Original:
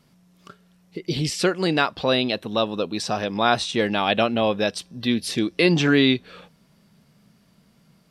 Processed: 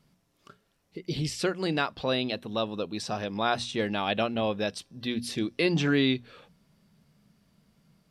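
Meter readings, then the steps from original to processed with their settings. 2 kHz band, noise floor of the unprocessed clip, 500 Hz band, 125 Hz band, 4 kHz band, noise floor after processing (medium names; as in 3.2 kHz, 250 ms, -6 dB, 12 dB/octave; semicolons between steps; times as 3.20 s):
-7.5 dB, -60 dBFS, -7.0 dB, -5.5 dB, -7.5 dB, -71 dBFS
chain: bass shelf 110 Hz +7.5 dB; hum notches 60/120/180/240 Hz; trim -7.5 dB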